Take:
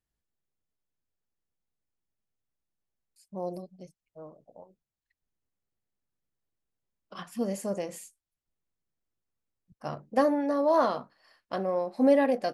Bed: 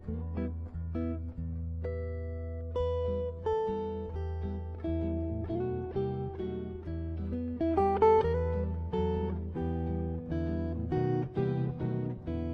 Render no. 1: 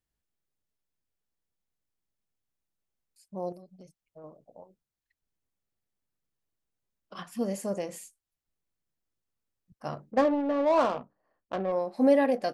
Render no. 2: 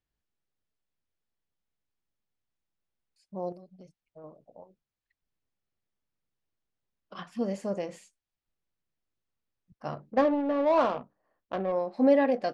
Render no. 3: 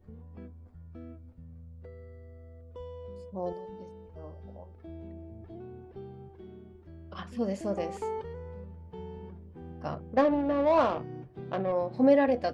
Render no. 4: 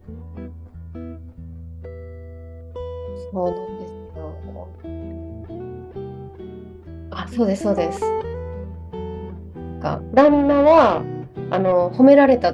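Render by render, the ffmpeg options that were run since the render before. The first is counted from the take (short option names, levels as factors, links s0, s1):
-filter_complex "[0:a]asettb=1/sr,asplit=3[s0][s1][s2];[s0]atrim=end=3.524[s3];[s1]atrim=start=3.52:end=4.24,asetpts=PTS-STARTPTS,afade=t=in:d=0.004:c=qsin,afade=t=out:st=0.716:d=0.004:c=qsin,acompressor=threshold=0.00631:ratio=12:attack=3.2:release=140:knee=1:detection=peak[s4];[s2]atrim=start=4.236[s5];[s3][s4]acrossfade=d=0.004:c1=hsin:c2=qsin[s6];[s6][s5]acrossfade=d=0.004:c1=qsin:c2=hsin,asettb=1/sr,asplit=3[s7][s8][s9];[s7]atrim=end=10.114[s10];[s8]atrim=start=10.11:end=11.72,asetpts=PTS-STARTPTS,afade=t=in:d=0.004:c=qsin,afade=t=out:st=1.606:d=0.004:c=qsin,adynamicsmooth=sensitivity=3:basefreq=650[s11];[s9]atrim=start=11.716[s12];[s10][s11]acrossfade=d=0.004:c1=hsin:c2=qsin[s13];[s13][s12]acrossfade=d=0.004:c1=qsin:c2=hsin"
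-af "lowpass=4700"
-filter_complex "[1:a]volume=0.266[s0];[0:a][s0]amix=inputs=2:normalize=0"
-af "volume=3.98,alimiter=limit=0.794:level=0:latency=1"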